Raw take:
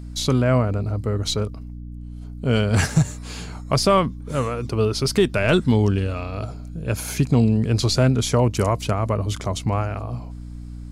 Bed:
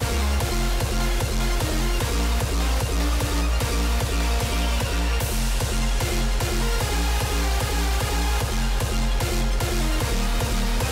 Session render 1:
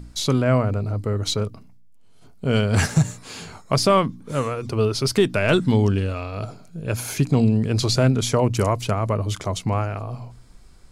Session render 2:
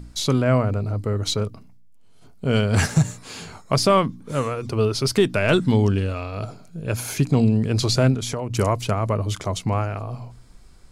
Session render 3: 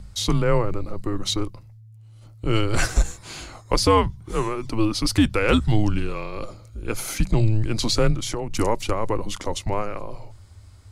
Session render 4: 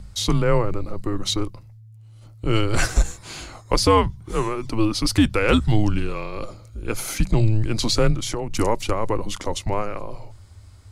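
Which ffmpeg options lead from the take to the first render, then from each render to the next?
-af "bandreject=f=60:t=h:w=4,bandreject=f=120:t=h:w=4,bandreject=f=180:t=h:w=4,bandreject=f=240:t=h:w=4,bandreject=f=300:t=h:w=4"
-filter_complex "[0:a]asettb=1/sr,asplit=3[a][b][c];[a]atrim=end=8.144[d];[b]atrim=start=8.14:end=8.54,asetpts=PTS-STARTPTS,afade=t=in:d=0.004:c=qsin,afade=t=out:st=0.396:d=0.004:c=qsin,acompressor=threshold=-23dB:ratio=6:attack=3.2:release=140:knee=1:detection=peak[e];[c]atrim=start=8.536[f];[d][e]acrossfade=d=0.004:c1=hsin:c2=qsin[g];[g][f]acrossfade=d=0.004:c1=qsin:c2=hsin"
-af "afreqshift=-110"
-af "volume=1dB"

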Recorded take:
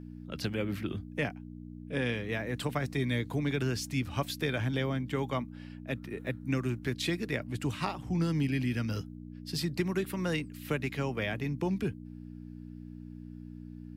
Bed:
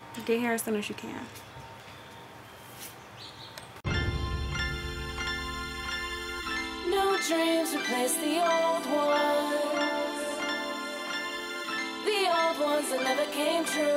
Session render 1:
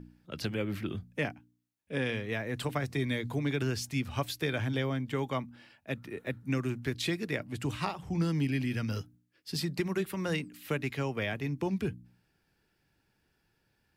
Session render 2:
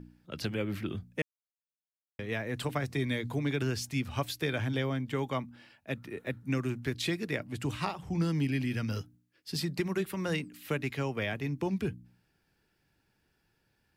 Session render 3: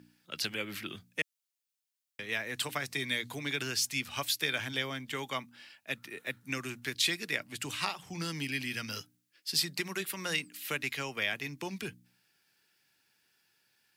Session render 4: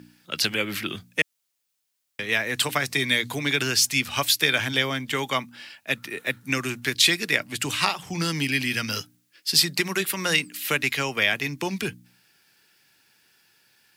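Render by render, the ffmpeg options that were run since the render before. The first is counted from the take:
-af "bandreject=f=60:t=h:w=4,bandreject=f=120:t=h:w=4,bandreject=f=180:t=h:w=4,bandreject=f=240:t=h:w=4,bandreject=f=300:t=h:w=4"
-filter_complex "[0:a]asplit=3[a][b][c];[a]atrim=end=1.22,asetpts=PTS-STARTPTS,afade=t=out:st=1.216:d=0.004:c=hsin[d];[b]atrim=start=1.22:end=2.19,asetpts=PTS-STARTPTS,volume=0[e];[c]atrim=start=2.19,asetpts=PTS-STARTPTS,afade=t=in:d=0.004:c=hsin[f];[d][e][f]concat=n=3:v=0:a=1"
-af "highpass=130,tiltshelf=f=1.2k:g=-9"
-af "volume=10.5dB"

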